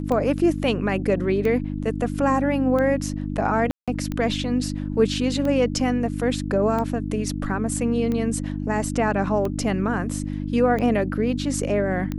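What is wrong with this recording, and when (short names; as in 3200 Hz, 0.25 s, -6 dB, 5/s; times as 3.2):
hum 50 Hz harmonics 6 -28 dBFS
tick 45 rpm -16 dBFS
3.71–3.88 gap 0.166 s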